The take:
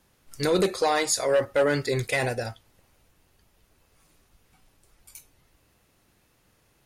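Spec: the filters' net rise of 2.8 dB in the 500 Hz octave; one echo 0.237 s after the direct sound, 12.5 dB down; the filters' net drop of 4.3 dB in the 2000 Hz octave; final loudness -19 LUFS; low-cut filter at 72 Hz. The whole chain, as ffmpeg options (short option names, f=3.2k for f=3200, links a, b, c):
-af "highpass=72,equalizer=f=500:t=o:g=3.5,equalizer=f=2k:t=o:g=-5.5,aecho=1:1:237:0.237,volume=4dB"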